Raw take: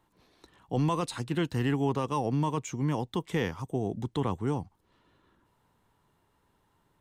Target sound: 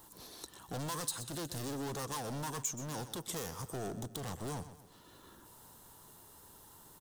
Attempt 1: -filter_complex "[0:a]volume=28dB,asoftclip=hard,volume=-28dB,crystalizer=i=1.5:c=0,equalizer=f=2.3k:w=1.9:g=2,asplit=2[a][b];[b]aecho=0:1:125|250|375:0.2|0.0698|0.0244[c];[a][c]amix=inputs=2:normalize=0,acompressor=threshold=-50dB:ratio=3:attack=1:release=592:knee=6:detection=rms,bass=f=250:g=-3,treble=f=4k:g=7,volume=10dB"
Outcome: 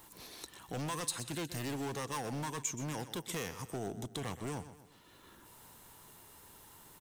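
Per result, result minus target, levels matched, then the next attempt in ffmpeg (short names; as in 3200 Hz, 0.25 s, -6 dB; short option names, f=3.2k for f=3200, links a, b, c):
2000 Hz band +3.5 dB; overloaded stage: distortion -5 dB
-filter_complex "[0:a]volume=28dB,asoftclip=hard,volume=-28dB,crystalizer=i=1.5:c=0,equalizer=f=2.3k:w=1.9:g=-7,asplit=2[a][b];[b]aecho=0:1:125|250|375:0.2|0.0698|0.0244[c];[a][c]amix=inputs=2:normalize=0,acompressor=threshold=-50dB:ratio=3:attack=1:release=592:knee=6:detection=rms,bass=f=250:g=-3,treble=f=4k:g=7,volume=10dB"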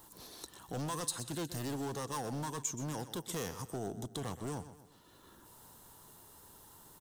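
overloaded stage: distortion -5 dB
-filter_complex "[0:a]volume=35dB,asoftclip=hard,volume=-35dB,crystalizer=i=1.5:c=0,equalizer=f=2.3k:w=1.9:g=-7,asplit=2[a][b];[b]aecho=0:1:125|250|375:0.2|0.0698|0.0244[c];[a][c]amix=inputs=2:normalize=0,acompressor=threshold=-50dB:ratio=3:attack=1:release=592:knee=6:detection=rms,bass=f=250:g=-3,treble=f=4k:g=7,volume=10dB"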